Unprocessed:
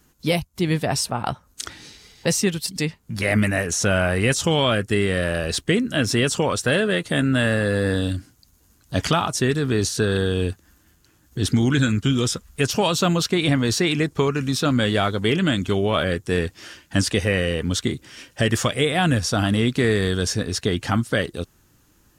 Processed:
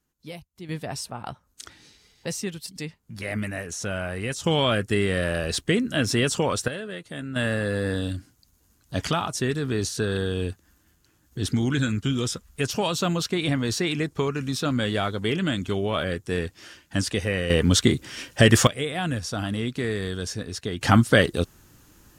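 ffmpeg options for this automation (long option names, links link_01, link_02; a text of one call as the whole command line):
ffmpeg -i in.wav -af "asetnsamples=nb_out_samples=441:pad=0,asendcmd='0.69 volume volume -10dB;4.46 volume volume -2.5dB;6.68 volume volume -14dB;7.36 volume volume -5dB;17.5 volume volume 4.5dB;18.67 volume volume -8dB;20.81 volume volume 4.5dB',volume=-18dB" out.wav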